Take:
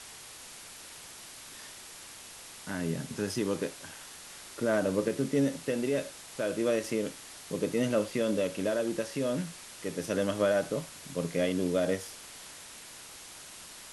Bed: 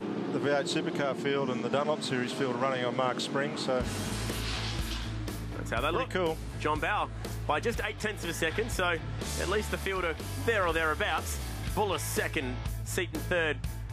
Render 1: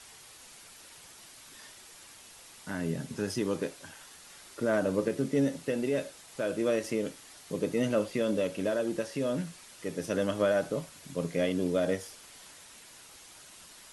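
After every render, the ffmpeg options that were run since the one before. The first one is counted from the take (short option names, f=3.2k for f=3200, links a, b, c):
-af "afftdn=nr=6:nf=-48"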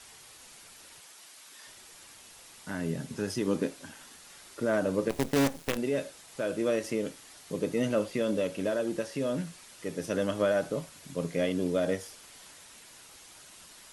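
-filter_complex "[0:a]asettb=1/sr,asplit=3[a][b][c];[a]atrim=end=1.004[d];[b]atrim=start=1:end=1.67,asetpts=PTS-STARTPTS,afade=t=in:d=0.004:c=qsin,afade=t=out:st=0.666:d=0.004:c=qsin,highpass=f=560:p=1[e];[c]atrim=start=1.666[f];[d][e]acrossfade=d=0.004:c1=hsin:c2=qsin[g];[g][f]acrossfade=d=0.004:c1=qsin:c2=hsin,asettb=1/sr,asplit=3[h][i][j];[h]atrim=end=3.474[k];[i]atrim=start=3.47:end=4.16,asetpts=PTS-STARTPTS,afade=t=in:d=0.004:c=qsin,afade=t=out:st=0.686:d=0.004:c=qsin,equalizer=f=240:t=o:w=0.77:g=8.5[l];[j]atrim=start=4.156[m];[k][l]acrossfade=d=0.004:c1=hsin:c2=qsin[n];[n][m]acrossfade=d=0.004:c1=qsin:c2=hsin,asplit=3[o][p][q];[o]afade=t=out:st=5.09:d=0.02[r];[p]acrusher=bits=5:dc=4:mix=0:aa=0.000001,afade=t=in:st=5.09:d=0.02,afade=t=out:st=5.76:d=0.02[s];[q]afade=t=in:st=5.76:d=0.02[t];[r][s][t]amix=inputs=3:normalize=0"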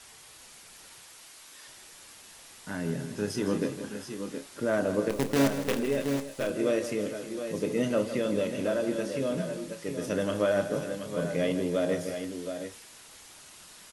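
-filter_complex "[0:a]asplit=2[a][b];[b]adelay=29,volume=-12dB[c];[a][c]amix=inputs=2:normalize=0,aecho=1:1:160|316|710|724:0.282|0.2|0.15|0.355"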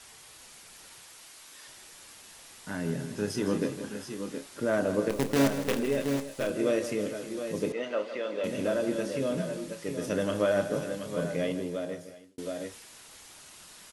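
-filter_complex "[0:a]asettb=1/sr,asplit=3[a][b][c];[a]atrim=end=7.724[d];[b]atrim=start=7.72:end=8.44,asetpts=PTS-STARTPTS,afade=t=in:d=0.004:c=qsin,afade=t=out:st=0.716:d=0.004:c=qsin,highpass=530,lowpass=3.5k[e];[c]atrim=start=8.436[f];[d][e]acrossfade=d=0.004:c1=hsin:c2=qsin[g];[g][f]acrossfade=d=0.004:c1=qsin:c2=hsin,asplit=2[h][i];[h]atrim=end=12.38,asetpts=PTS-STARTPTS,afade=t=out:st=11.15:d=1.23[j];[i]atrim=start=12.38,asetpts=PTS-STARTPTS,afade=t=in:d=0.004:c=hsin[k];[j][k]concat=n=2:v=0:a=1"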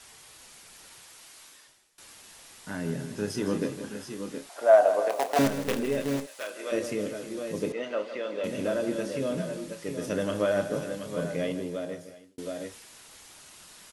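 -filter_complex "[0:a]asettb=1/sr,asplit=3[a][b][c];[a]atrim=end=4.494[d];[b]atrim=start=4.49:end=5.39,asetpts=PTS-STARTPTS,afade=t=in:d=0.004:c=qsin,afade=t=out:st=0.896:d=0.004:c=qsin,highpass=f=700:t=q:w=8.1[e];[c]atrim=start=5.386[f];[d][e]acrossfade=d=0.004:c1=hsin:c2=qsin[g];[g][f]acrossfade=d=0.004:c1=qsin:c2=hsin,asplit=3[h][i][j];[h]afade=t=out:st=6.25:d=0.02[k];[i]highpass=800,afade=t=in:st=6.25:d=0.02,afade=t=out:st=6.71:d=0.02[l];[j]afade=t=in:st=6.71:d=0.02[m];[k][l][m]amix=inputs=3:normalize=0,asplit=2[n][o];[n]atrim=end=1.98,asetpts=PTS-STARTPTS,afade=t=out:st=1.45:d=0.53:c=qua:silence=0.0944061[p];[o]atrim=start=1.98,asetpts=PTS-STARTPTS,afade=t=in:d=0.004:c=hsin:silence=0.0944061[q];[p][q]concat=n=2:v=0:a=1"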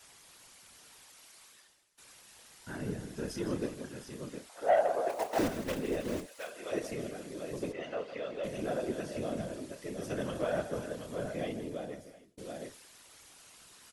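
-af "asoftclip=type=tanh:threshold=-13.5dB,afftfilt=real='hypot(re,im)*cos(2*PI*random(0))':imag='hypot(re,im)*sin(2*PI*random(1))':win_size=512:overlap=0.75"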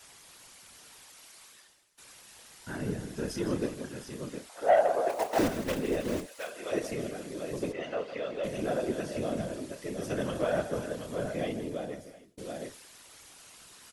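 -af "volume=3.5dB"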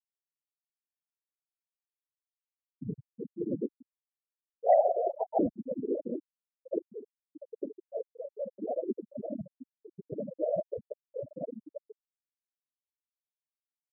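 -af "afftfilt=real='re*gte(hypot(re,im),0.158)':imag='im*gte(hypot(re,im),0.158)':win_size=1024:overlap=0.75,highpass=85"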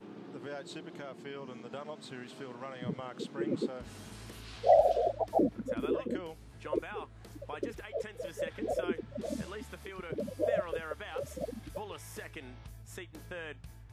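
-filter_complex "[1:a]volume=-14dB[a];[0:a][a]amix=inputs=2:normalize=0"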